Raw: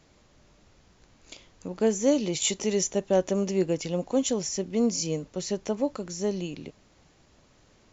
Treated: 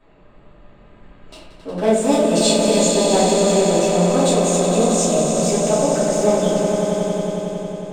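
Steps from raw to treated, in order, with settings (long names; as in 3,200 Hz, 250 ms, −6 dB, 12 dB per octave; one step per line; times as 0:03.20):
adaptive Wiener filter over 9 samples
low-shelf EQ 330 Hz −7 dB
in parallel at +2 dB: downward compressor, threshold −32 dBFS, peak gain reduction 12 dB
on the sum: flanger 1.8 Hz, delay 2.6 ms, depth 7.2 ms, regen −50%
formants moved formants +3 semitones
on a send: echo that builds up and dies away 91 ms, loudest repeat 5, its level −8.5 dB
on the sum: rectangular room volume 95 cubic metres, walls mixed, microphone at 2.8 metres
one half of a high-frequency compander decoder only
level −1 dB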